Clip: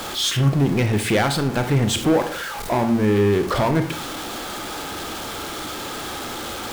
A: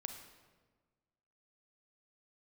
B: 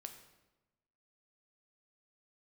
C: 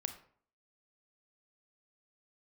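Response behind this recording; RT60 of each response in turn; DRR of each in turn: C; 1.4, 1.1, 0.55 s; 5.5, 5.5, 7.5 dB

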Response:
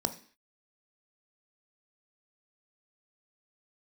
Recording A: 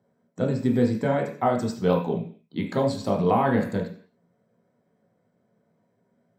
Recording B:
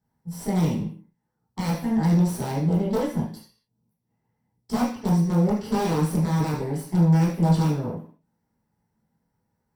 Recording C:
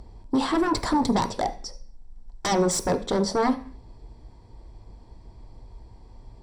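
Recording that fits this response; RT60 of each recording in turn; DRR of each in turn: C; 0.45, 0.45, 0.45 s; -0.5, -7.5, 8.0 dB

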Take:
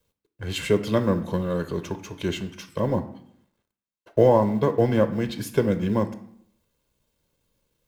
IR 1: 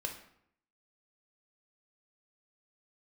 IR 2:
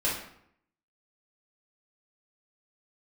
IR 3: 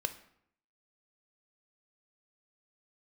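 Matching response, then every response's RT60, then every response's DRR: 3; 0.70, 0.70, 0.70 s; 2.5, -7.0, 9.0 dB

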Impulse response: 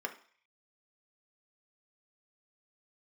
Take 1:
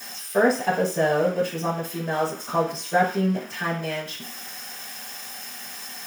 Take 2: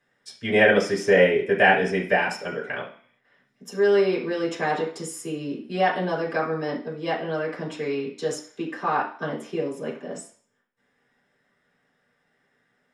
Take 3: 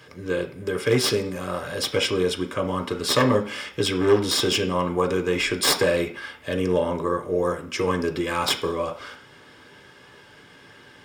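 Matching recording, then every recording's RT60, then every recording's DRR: 3; 0.45, 0.45, 0.45 s; -15.5, -6.5, 3.5 dB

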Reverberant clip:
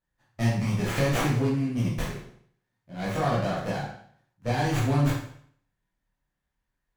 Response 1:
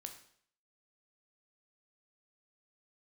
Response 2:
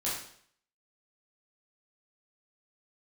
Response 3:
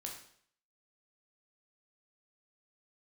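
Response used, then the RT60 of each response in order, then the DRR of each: 2; 0.60, 0.60, 0.60 s; 5.0, -8.0, 0.0 dB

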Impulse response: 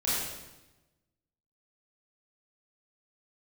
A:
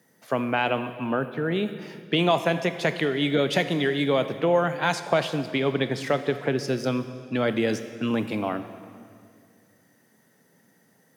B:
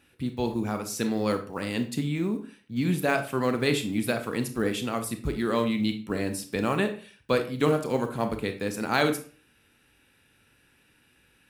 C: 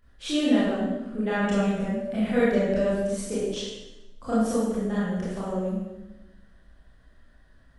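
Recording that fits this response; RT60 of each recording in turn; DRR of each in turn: C; 2.1, 0.40, 1.0 s; 10.0, 7.0, -10.0 dB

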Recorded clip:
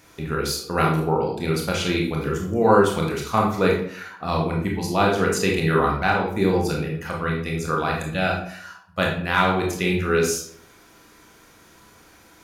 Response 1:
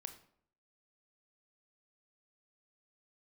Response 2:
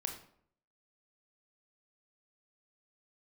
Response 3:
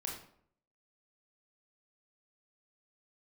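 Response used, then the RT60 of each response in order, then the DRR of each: 3; 0.65, 0.65, 0.65 s; 7.5, 3.5, -1.5 dB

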